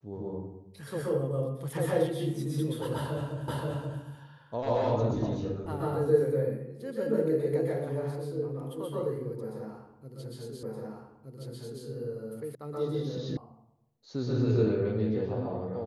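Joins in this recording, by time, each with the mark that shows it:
0:03.48: the same again, the last 0.53 s
0:10.63: the same again, the last 1.22 s
0:12.55: cut off before it has died away
0:13.37: cut off before it has died away

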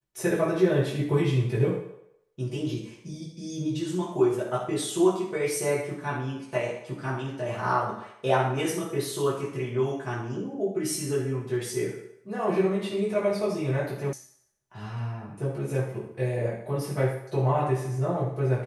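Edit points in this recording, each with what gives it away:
0:14.13: cut off before it has died away

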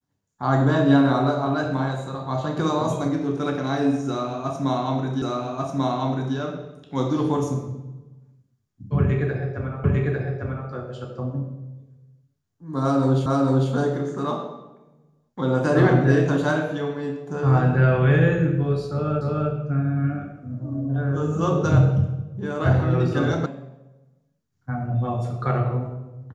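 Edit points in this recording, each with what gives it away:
0:05.22: the same again, the last 1.14 s
0:09.84: the same again, the last 0.85 s
0:13.26: the same again, the last 0.45 s
0:19.21: the same again, the last 0.3 s
0:23.46: cut off before it has died away

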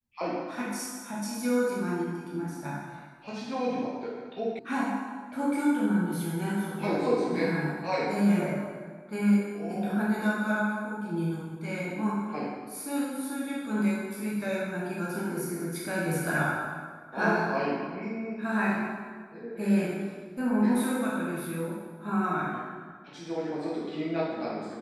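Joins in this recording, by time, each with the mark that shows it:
0:04.59: cut off before it has died away

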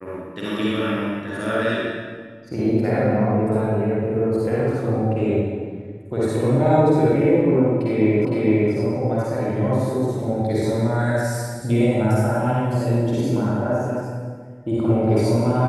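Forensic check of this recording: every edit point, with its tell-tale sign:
0:08.25: the same again, the last 0.46 s

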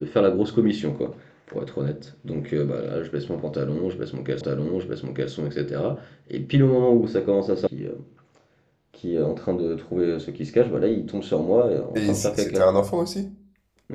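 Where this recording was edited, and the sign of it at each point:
0:04.41: the same again, the last 0.9 s
0:07.67: cut off before it has died away

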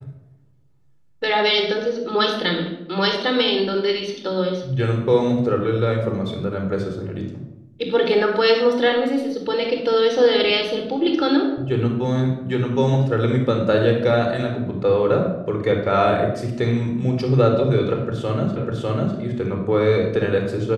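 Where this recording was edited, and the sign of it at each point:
0:18.56: the same again, the last 0.6 s

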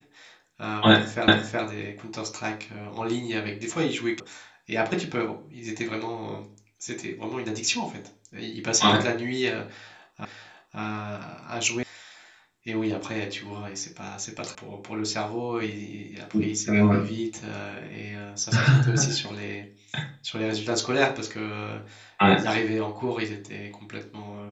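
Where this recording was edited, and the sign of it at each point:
0:01.28: the same again, the last 0.37 s
0:04.20: cut off before it has died away
0:10.25: the same again, the last 0.55 s
0:11.83: cut off before it has died away
0:14.55: cut off before it has died away

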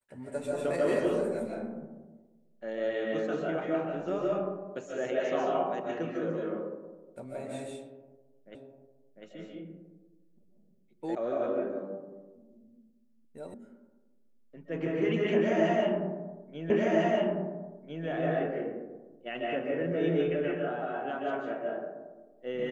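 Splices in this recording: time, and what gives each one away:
0:08.55: the same again, the last 0.7 s
0:11.15: cut off before it has died away
0:13.54: cut off before it has died away
0:16.70: the same again, the last 1.35 s

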